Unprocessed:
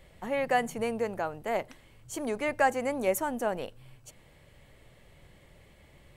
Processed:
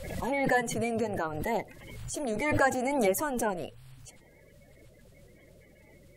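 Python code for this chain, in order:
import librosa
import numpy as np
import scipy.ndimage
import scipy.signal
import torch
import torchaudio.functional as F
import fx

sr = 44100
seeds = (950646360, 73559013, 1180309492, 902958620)

y = fx.spec_quant(x, sr, step_db=30)
y = fx.pre_swell(y, sr, db_per_s=39.0)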